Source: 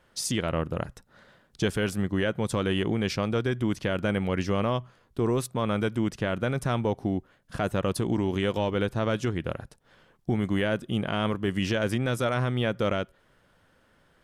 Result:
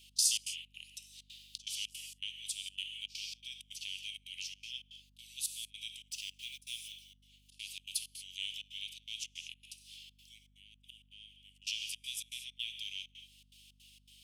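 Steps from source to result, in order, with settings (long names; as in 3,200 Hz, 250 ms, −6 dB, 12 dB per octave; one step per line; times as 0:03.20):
0:06.08–0:06.92: mu-law and A-law mismatch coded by mu
speech leveller 2 s
0:10.38–0:11.62: gate with flip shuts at −25 dBFS, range −29 dB
downward compressor 2 to 1, threshold −48 dBFS, peak gain reduction 15.5 dB
Butterworth high-pass 2,600 Hz 72 dB per octave
reverb whose tail is shaped and stops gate 260 ms flat, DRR 5.5 dB
gate pattern "x.xx.xx.xxxxx.xx" 162 BPM −24 dB
mains hum 50 Hz, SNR 25 dB
level +13 dB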